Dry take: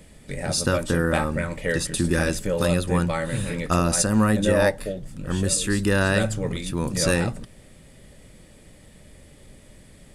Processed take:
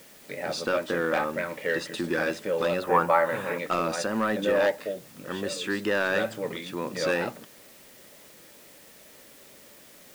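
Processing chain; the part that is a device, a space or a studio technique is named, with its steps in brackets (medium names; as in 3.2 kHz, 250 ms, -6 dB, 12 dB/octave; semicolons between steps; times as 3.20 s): tape answering machine (band-pass 340–3400 Hz; saturation -16 dBFS, distortion -16 dB; wow and flutter; white noise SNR 23 dB); 2.82–3.58 s: FFT filter 310 Hz 0 dB, 990 Hz +12 dB, 3.5 kHz -5 dB, 12 kHz +2 dB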